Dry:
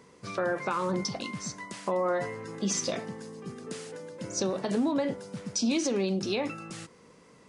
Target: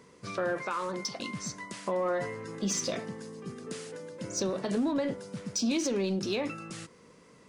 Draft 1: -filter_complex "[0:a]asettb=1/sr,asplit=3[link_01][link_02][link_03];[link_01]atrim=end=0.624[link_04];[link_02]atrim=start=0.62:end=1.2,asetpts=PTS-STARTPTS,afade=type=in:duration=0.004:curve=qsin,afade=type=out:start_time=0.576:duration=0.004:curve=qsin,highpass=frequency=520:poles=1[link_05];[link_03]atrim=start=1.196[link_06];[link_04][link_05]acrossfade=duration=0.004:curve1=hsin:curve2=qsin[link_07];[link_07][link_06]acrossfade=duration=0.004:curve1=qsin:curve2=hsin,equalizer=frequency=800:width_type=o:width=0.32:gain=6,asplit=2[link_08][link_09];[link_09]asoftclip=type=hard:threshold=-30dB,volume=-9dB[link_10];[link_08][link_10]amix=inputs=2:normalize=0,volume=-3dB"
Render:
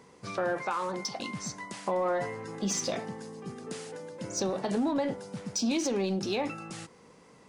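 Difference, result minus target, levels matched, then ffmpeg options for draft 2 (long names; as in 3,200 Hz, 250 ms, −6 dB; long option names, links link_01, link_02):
1,000 Hz band +2.5 dB
-filter_complex "[0:a]asettb=1/sr,asplit=3[link_01][link_02][link_03];[link_01]atrim=end=0.624[link_04];[link_02]atrim=start=0.62:end=1.2,asetpts=PTS-STARTPTS,afade=type=in:duration=0.004:curve=qsin,afade=type=out:start_time=0.576:duration=0.004:curve=qsin,highpass=frequency=520:poles=1[link_05];[link_03]atrim=start=1.196[link_06];[link_04][link_05]acrossfade=duration=0.004:curve1=hsin:curve2=qsin[link_07];[link_07][link_06]acrossfade=duration=0.004:curve1=qsin:curve2=hsin,equalizer=frequency=800:width_type=o:width=0.32:gain=-4,asplit=2[link_08][link_09];[link_09]asoftclip=type=hard:threshold=-30dB,volume=-9dB[link_10];[link_08][link_10]amix=inputs=2:normalize=0,volume=-3dB"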